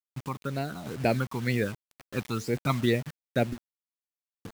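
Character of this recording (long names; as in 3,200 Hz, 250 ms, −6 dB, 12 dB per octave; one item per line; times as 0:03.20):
phaser sweep stages 12, 2.1 Hz, lowest notch 480–1,200 Hz
a quantiser's noise floor 8 bits, dither none
sample-and-hold tremolo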